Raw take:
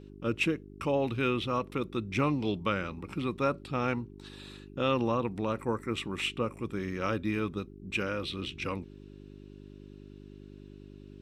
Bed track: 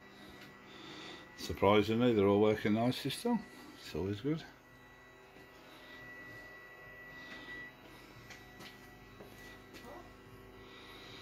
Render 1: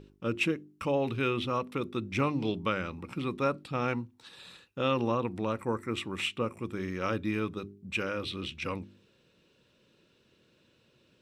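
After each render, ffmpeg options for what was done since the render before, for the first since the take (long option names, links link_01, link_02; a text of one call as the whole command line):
ffmpeg -i in.wav -af "bandreject=frequency=50:width_type=h:width=4,bandreject=frequency=100:width_type=h:width=4,bandreject=frequency=150:width_type=h:width=4,bandreject=frequency=200:width_type=h:width=4,bandreject=frequency=250:width_type=h:width=4,bandreject=frequency=300:width_type=h:width=4,bandreject=frequency=350:width_type=h:width=4,bandreject=frequency=400:width_type=h:width=4" out.wav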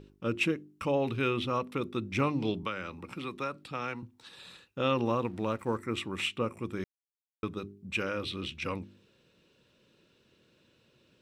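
ffmpeg -i in.wav -filter_complex "[0:a]asettb=1/sr,asplit=3[link_01][link_02][link_03];[link_01]atrim=end=2.634[link_04];[link_02]atrim=start=2.63:end=4.03,asetpts=PTS-STARTPTS,afade=type=in:duration=0.004:curve=qsin,afade=type=out:start_time=1.396:duration=0.004:curve=qsin,acrossover=split=280|1000[link_05][link_06][link_07];[link_05]acompressor=threshold=-46dB:ratio=4[link_08];[link_06]acompressor=threshold=-40dB:ratio=4[link_09];[link_07]acompressor=threshold=-34dB:ratio=4[link_10];[link_08][link_09][link_10]amix=inputs=3:normalize=0[link_11];[link_03]atrim=start=4.026[link_12];[link_04][link_11]acrossfade=duration=0.004:curve1=hsin:curve2=qsin[link_13];[link_13][link_12]acrossfade=duration=0.004:curve1=qsin:curve2=hsin,asettb=1/sr,asplit=3[link_14][link_15][link_16];[link_14]atrim=end=5.064[link_17];[link_15]atrim=start=5.06:end=5.78,asetpts=PTS-STARTPTS,afade=type=in:duration=0.004:curve=qsin,afade=type=out:start_time=0.716:duration=0.004:curve=qsin,aeval=exprs='sgn(val(0))*max(abs(val(0))-0.00126,0)':channel_layout=same[link_18];[link_16]atrim=start=5.776[link_19];[link_17][link_18]acrossfade=duration=0.004:curve1=hsin:curve2=qsin[link_20];[link_20][link_19]acrossfade=duration=0.004:curve1=qsin:curve2=hsin,asplit=3[link_21][link_22][link_23];[link_21]atrim=end=6.84,asetpts=PTS-STARTPTS,afade=type=out:start_time=6.836:duration=0.004:curve=hsin[link_24];[link_22]atrim=start=6.84:end=7.43,asetpts=PTS-STARTPTS,volume=0[link_25];[link_23]atrim=start=7.43,asetpts=PTS-STARTPTS,afade=type=in:duration=0.004:curve=hsin[link_26];[link_24][link_25][link_26]concat=n=3:v=0:a=1" out.wav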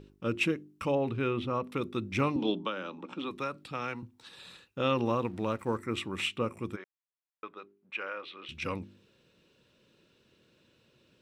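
ffmpeg -i in.wav -filter_complex "[0:a]asettb=1/sr,asplit=3[link_01][link_02][link_03];[link_01]atrim=end=0.954[link_04];[link_02]atrim=start=0.95:end=1.64,asetpts=PTS-STARTPTS,afade=type=in:duration=0.004:curve=qsin,afade=type=out:start_time=0.686:duration=0.004:curve=qsin,highshelf=frequency=2600:gain=-11[link_05];[link_03]atrim=start=1.636[link_06];[link_04][link_05]acrossfade=duration=0.004:curve1=hsin:curve2=qsin[link_07];[link_07][link_06]acrossfade=duration=0.004:curve1=qsin:curve2=hsin,asettb=1/sr,asplit=3[link_08][link_09][link_10];[link_08]atrim=end=2.364[link_11];[link_09]atrim=start=2.36:end=3.31,asetpts=PTS-STARTPTS,afade=type=in:duration=0.004:curve=qsin,afade=type=out:start_time=0.946:duration=0.004:curve=qsin,highpass=frequency=180:width=0.5412,highpass=frequency=180:width=1.3066,equalizer=frequency=290:width_type=q:width=4:gain=5,equalizer=frequency=570:width_type=q:width=4:gain=4,equalizer=frequency=880:width_type=q:width=4:gain=4,equalizer=frequency=2100:width_type=q:width=4:gain=-9,equalizer=frequency=3400:width_type=q:width=4:gain=7,equalizer=frequency=4800:width_type=q:width=4:gain=-10,lowpass=frequency=6300:width=0.5412,lowpass=frequency=6300:width=1.3066[link_12];[link_10]atrim=start=3.306[link_13];[link_11][link_12]acrossfade=duration=0.004:curve1=hsin:curve2=qsin[link_14];[link_14][link_13]acrossfade=duration=0.004:curve1=qsin:curve2=hsin,asplit=3[link_15][link_16][link_17];[link_15]afade=type=out:start_time=6.75:duration=0.02[link_18];[link_16]highpass=690,lowpass=2200,afade=type=in:start_time=6.75:duration=0.02,afade=type=out:start_time=8.48:duration=0.02[link_19];[link_17]afade=type=in:start_time=8.48:duration=0.02[link_20];[link_18][link_19][link_20]amix=inputs=3:normalize=0" out.wav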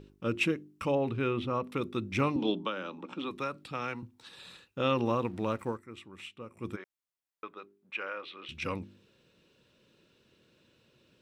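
ffmpeg -i in.wav -filter_complex "[0:a]asplit=3[link_01][link_02][link_03];[link_01]atrim=end=5.85,asetpts=PTS-STARTPTS,afade=type=out:start_time=5.66:duration=0.19:curve=qua:silence=0.211349[link_04];[link_02]atrim=start=5.85:end=6.48,asetpts=PTS-STARTPTS,volume=-13.5dB[link_05];[link_03]atrim=start=6.48,asetpts=PTS-STARTPTS,afade=type=in:duration=0.19:curve=qua:silence=0.211349[link_06];[link_04][link_05][link_06]concat=n=3:v=0:a=1" out.wav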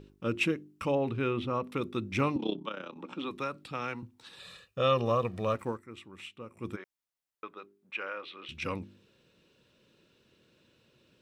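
ffmpeg -i in.wav -filter_complex "[0:a]asettb=1/sr,asplit=3[link_01][link_02][link_03];[link_01]atrim=end=2.374[link_04];[link_02]atrim=start=2.37:end=2.96,asetpts=PTS-STARTPTS,afade=type=in:duration=0.004:curve=qsin,afade=type=out:start_time=0.586:duration=0.004:curve=qsin,tremolo=f=32:d=0.788[link_05];[link_03]atrim=start=2.956[link_06];[link_04][link_05]acrossfade=duration=0.004:curve1=hsin:curve2=qsin[link_07];[link_07][link_06]acrossfade=duration=0.004:curve1=qsin:curve2=hsin,asettb=1/sr,asplit=3[link_08][link_09][link_10];[link_08]atrim=end=4.404[link_11];[link_09]atrim=start=4.4:end=5.55,asetpts=PTS-STARTPTS,afade=type=in:duration=0.004:curve=qsin,afade=type=out:start_time=1.146:duration=0.004:curve=qsin,aecho=1:1:1.7:0.65,atrim=end_sample=50715[link_12];[link_10]atrim=start=5.546[link_13];[link_11][link_12]acrossfade=duration=0.004:curve1=hsin:curve2=qsin[link_14];[link_14][link_13]acrossfade=duration=0.004:curve1=qsin:curve2=hsin" out.wav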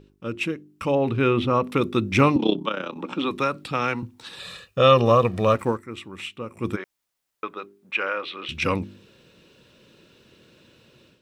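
ffmpeg -i in.wav -af "dynaudnorm=framelen=650:gausssize=3:maxgain=11.5dB" out.wav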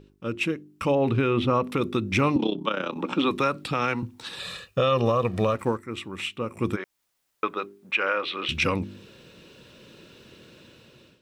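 ffmpeg -i in.wav -af "dynaudnorm=framelen=380:gausssize=5:maxgain=5dB,alimiter=limit=-13dB:level=0:latency=1:release=284" out.wav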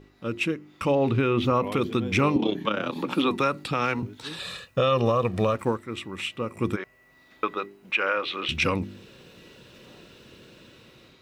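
ffmpeg -i in.wav -i bed.wav -filter_complex "[1:a]volume=-7dB[link_01];[0:a][link_01]amix=inputs=2:normalize=0" out.wav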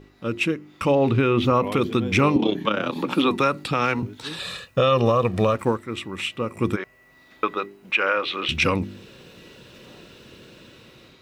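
ffmpeg -i in.wav -af "volume=3.5dB" out.wav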